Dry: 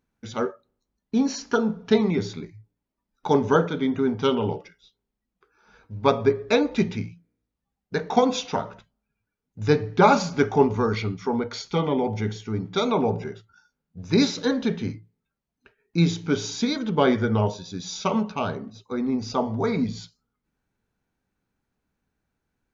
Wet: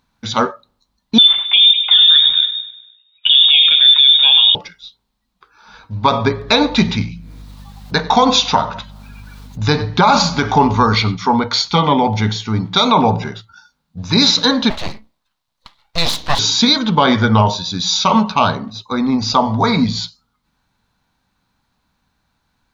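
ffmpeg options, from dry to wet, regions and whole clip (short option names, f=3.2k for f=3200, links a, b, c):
-filter_complex "[0:a]asettb=1/sr,asplit=3[a][b][c];[a]atrim=end=1.184[d];[b]atrim=start=1.18:end=4.55,asetpts=PTS-STARTPTS,afade=t=in:d=0.004:c=qsin,afade=t=out:st=3.366:d=0.004:c=qsin,aecho=1:1:100|200|300|400|500:0.178|0.0978|0.0538|0.0296|0.0163,atrim=end_sample=148617,lowpass=f=3.2k:t=q:w=0.5098,lowpass=f=3.2k:t=q:w=0.6013,lowpass=f=3.2k:t=q:w=0.9,lowpass=f=3.2k:t=q:w=2.563,afreqshift=-3800[e];[c]atrim=start=4.546[f];[d][e]acrossfade=d=0.004:c1=hsin:c2=qsin[g];[g][f]acrossfade=d=0.004:c1=qsin:c2=hsin,asettb=1/sr,asplit=3[h][i][j];[h]atrim=end=6.324[k];[i]atrim=start=6.32:end=11.16,asetpts=PTS-STARTPTS,afade=t=in:d=0.004:c=qsin,afade=t=out:st=4.836:d=0.004:c=qsin,acompressor=mode=upward:threshold=-32dB:ratio=2.5:attack=3.2:release=140:knee=2.83:detection=peak,aeval=exprs='val(0)+0.00501*(sin(2*PI*50*n/s)+sin(2*PI*2*50*n/s)/2+sin(2*PI*3*50*n/s)/3+sin(2*PI*4*50*n/s)/4+sin(2*PI*5*50*n/s)/5)':c=same,aecho=1:1:95:0.0891,atrim=end_sample=213444[l];[j]atrim=start=11.156[m];[k][l]acrossfade=d=0.004:c1=hsin:c2=qsin[n];[n][m]acrossfade=d=0.004:c1=qsin:c2=hsin,asettb=1/sr,asplit=3[o][p][q];[o]atrim=end=14.704[r];[p]atrim=start=14.7:end=16.39,asetpts=PTS-STARTPTS,afade=t=in:d=0.004:c=qsin,afade=t=out:st=1.686:d=0.004:c=qsin,equalizer=f=160:t=o:w=1.1:g=-8.5,aeval=exprs='abs(val(0))':c=same[s];[q]atrim=start=16.386[t];[r][s]acrossfade=d=0.004:c1=hsin:c2=qsin[u];[u][t]acrossfade=d=0.004:c1=qsin:c2=hsin,equalizer=f=400:t=o:w=0.67:g=-9,equalizer=f=1k:t=o:w=0.67:g=8,equalizer=f=4k:t=o:w=0.67:g=11,alimiter=level_in=12dB:limit=-1dB:release=50:level=0:latency=1,volume=-1dB"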